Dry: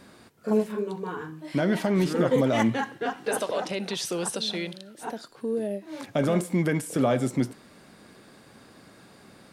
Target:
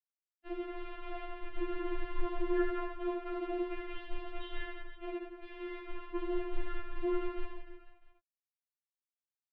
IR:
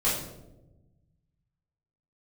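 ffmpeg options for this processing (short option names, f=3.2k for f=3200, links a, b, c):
-filter_complex "[0:a]afwtdn=0.0158,highshelf=f=2.1k:g=-12,asplit=2[a][b];[b]acompressor=threshold=-39dB:ratio=5,volume=-1.5dB[c];[a][c]amix=inputs=2:normalize=0,acrusher=bits=5:mix=0:aa=0.000001,afftfilt=real='hypot(re,im)*cos(PI*b)':imag='0':win_size=1024:overlap=0.75,asplit=2[d][e];[e]aecho=0:1:80|180|305|461.2|656.6:0.631|0.398|0.251|0.158|0.1[f];[d][f]amix=inputs=2:normalize=0,highpass=f=160:t=q:w=0.5412,highpass=f=160:t=q:w=1.307,lowpass=f=3.2k:t=q:w=0.5176,lowpass=f=3.2k:t=q:w=0.7071,lowpass=f=3.2k:t=q:w=1.932,afreqshift=-330,afftfilt=real='re*4*eq(mod(b,16),0)':imag='im*4*eq(mod(b,16),0)':win_size=2048:overlap=0.75,volume=-4.5dB"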